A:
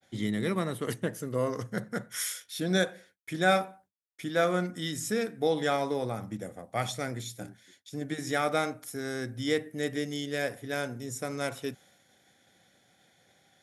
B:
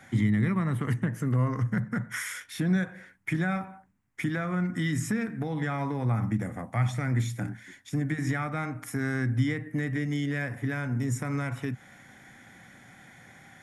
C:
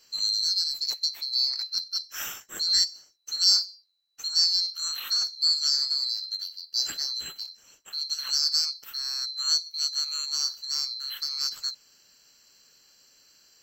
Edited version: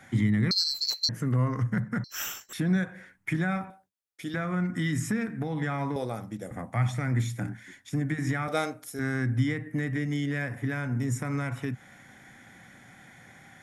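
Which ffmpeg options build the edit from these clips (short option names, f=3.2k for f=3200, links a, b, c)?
-filter_complex "[2:a]asplit=2[a][b];[0:a]asplit=3[c][d][e];[1:a]asplit=6[f][g][h][i][j][k];[f]atrim=end=0.512[l];[a]atrim=start=0.508:end=1.092[m];[g]atrim=start=1.088:end=2.042[n];[b]atrim=start=2.038:end=2.532[o];[h]atrim=start=2.528:end=3.702[p];[c]atrim=start=3.698:end=4.342[q];[i]atrim=start=4.338:end=5.962[r];[d]atrim=start=5.958:end=6.512[s];[j]atrim=start=6.508:end=8.482[t];[e]atrim=start=8.478:end=8.992[u];[k]atrim=start=8.988[v];[l][m]acrossfade=d=0.004:c1=hsin:c2=hsin[w];[w][n]acrossfade=d=0.004:c1=hsin:c2=hsin[x];[x][o]acrossfade=d=0.004:c1=hsin:c2=hsin[y];[y][p]acrossfade=d=0.004:c1=hsin:c2=hsin[z];[z][q]acrossfade=d=0.004:c1=hsin:c2=hsin[aa];[aa][r]acrossfade=d=0.004:c1=hsin:c2=hsin[ab];[ab][s]acrossfade=d=0.004:c1=hsin:c2=hsin[ac];[ac][t]acrossfade=d=0.004:c1=hsin:c2=hsin[ad];[ad][u]acrossfade=d=0.004:c1=hsin:c2=hsin[ae];[ae][v]acrossfade=d=0.004:c1=hsin:c2=hsin"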